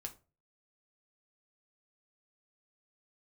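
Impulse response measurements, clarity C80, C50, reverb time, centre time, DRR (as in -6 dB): 22.0 dB, 16.0 dB, 0.35 s, 7 ms, 3.5 dB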